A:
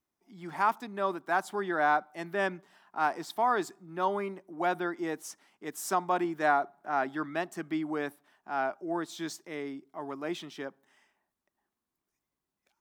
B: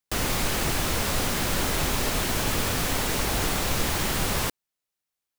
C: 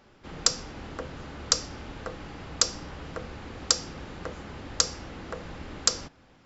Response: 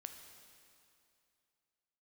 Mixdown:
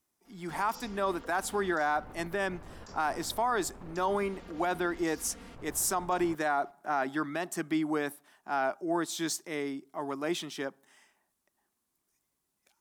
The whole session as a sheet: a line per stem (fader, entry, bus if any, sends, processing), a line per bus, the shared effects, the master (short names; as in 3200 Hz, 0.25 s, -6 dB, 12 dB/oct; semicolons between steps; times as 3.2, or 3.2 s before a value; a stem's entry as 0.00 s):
+3.0 dB, 0.00 s, no bus, no send, bell 10000 Hz +9 dB 1.6 oct
-9.0 dB, 1.85 s, muted 4.16–5.56, bus A, no send, LPF 1100 Hz 12 dB/oct
-17.0 dB, 0.25 s, bus A, no send, comb 4.3 ms, depth 87%
bus A: 0.0 dB, negative-ratio compressor -44 dBFS, ratio -1; limiter -38.5 dBFS, peak gain reduction 10 dB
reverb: off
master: limiter -20 dBFS, peak gain reduction 9 dB